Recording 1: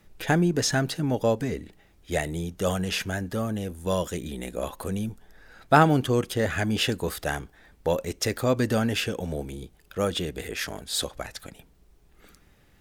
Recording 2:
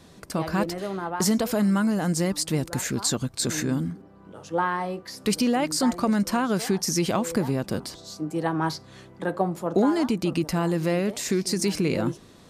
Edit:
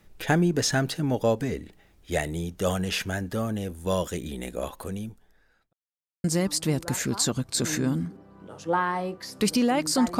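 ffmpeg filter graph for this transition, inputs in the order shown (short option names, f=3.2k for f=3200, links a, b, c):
-filter_complex "[0:a]apad=whole_dur=10.19,atrim=end=10.19,asplit=2[a][b];[a]atrim=end=5.73,asetpts=PTS-STARTPTS,afade=t=out:st=4.5:d=1.23[c];[b]atrim=start=5.73:end=6.24,asetpts=PTS-STARTPTS,volume=0[d];[1:a]atrim=start=2.09:end=6.04,asetpts=PTS-STARTPTS,afade=t=in:d=0.004:c=hsin[e];[c][d][e]concat=n=3:v=0:a=1"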